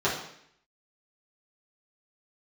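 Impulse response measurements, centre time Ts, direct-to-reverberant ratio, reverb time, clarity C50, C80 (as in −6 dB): 37 ms, −9.0 dB, 0.70 s, 4.5 dB, 8.5 dB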